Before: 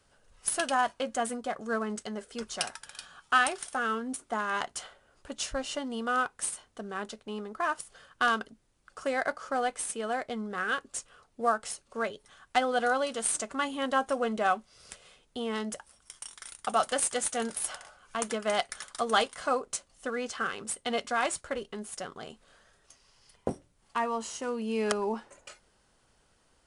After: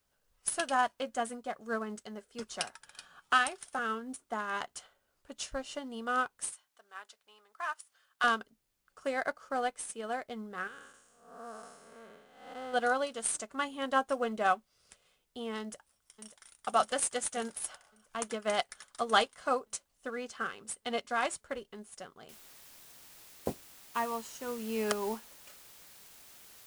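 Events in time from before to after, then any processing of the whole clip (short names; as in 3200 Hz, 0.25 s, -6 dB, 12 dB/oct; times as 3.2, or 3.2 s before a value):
2.39–3.79 three-band squash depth 40%
6.52–8.24 HPF 940 Hz
10.67–12.74 time blur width 0.354 s
15.6–16.37 echo throw 0.58 s, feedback 70%, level -8.5 dB
22.29 noise floor step -69 dB -44 dB
whole clip: upward expander 1.5:1, over -49 dBFS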